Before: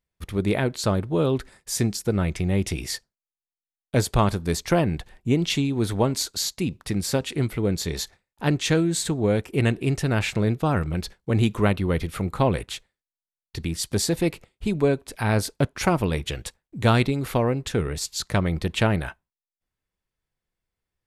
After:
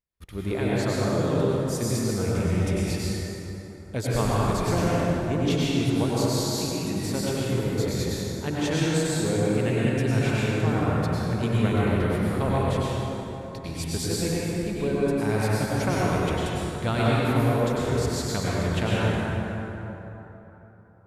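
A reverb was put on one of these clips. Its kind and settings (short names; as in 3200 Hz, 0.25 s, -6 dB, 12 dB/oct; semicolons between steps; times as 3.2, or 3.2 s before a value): plate-style reverb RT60 3.6 s, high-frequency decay 0.5×, pre-delay 85 ms, DRR -7.5 dB; gain -9 dB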